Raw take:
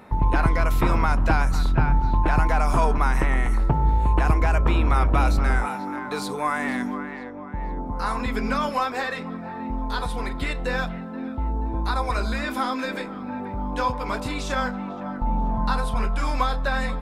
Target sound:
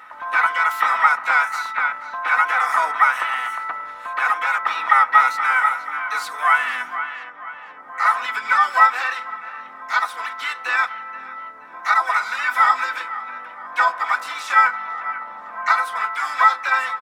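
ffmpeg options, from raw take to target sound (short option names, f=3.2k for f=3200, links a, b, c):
-filter_complex "[0:a]aecho=1:1:4:0.65,aeval=exprs='val(0)+0.0251*(sin(2*PI*60*n/s)+sin(2*PI*2*60*n/s)/2+sin(2*PI*3*60*n/s)/3+sin(2*PI*4*60*n/s)/4+sin(2*PI*5*60*n/s)/5)':c=same,highpass=f=1.3k:t=q:w=5.7,asplit=3[a][b][c];[b]asetrate=29433,aresample=44100,atempo=1.49831,volume=-12dB[d];[c]asetrate=66075,aresample=44100,atempo=0.66742,volume=-8dB[e];[a][d][e]amix=inputs=3:normalize=0,volume=-2dB"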